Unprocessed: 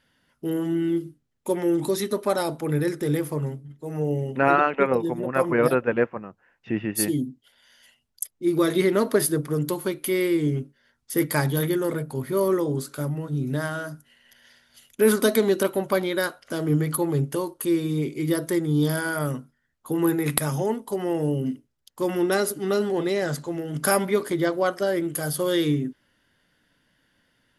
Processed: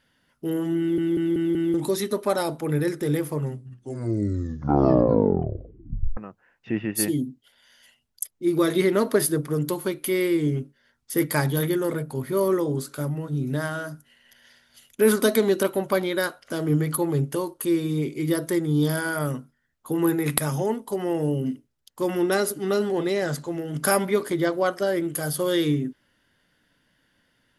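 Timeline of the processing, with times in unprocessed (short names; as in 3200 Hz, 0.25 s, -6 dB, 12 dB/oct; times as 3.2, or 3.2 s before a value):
0.79 stutter in place 0.19 s, 5 plays
3.42 tape stop 2.75 s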